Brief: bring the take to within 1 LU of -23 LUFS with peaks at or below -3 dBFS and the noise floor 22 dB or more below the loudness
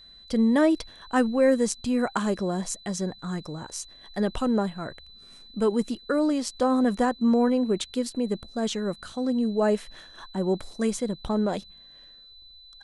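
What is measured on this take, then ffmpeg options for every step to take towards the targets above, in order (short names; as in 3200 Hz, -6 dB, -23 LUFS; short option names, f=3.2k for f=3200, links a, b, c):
steady tone 4000 Hz; tone level -48 dBFS; loudness -26.0 LUFS; peak -10.0 dBFS; loudness target -23.0 LUFS
-> -af "bandreject=f=4k:w=30"
-af "volume=3dB"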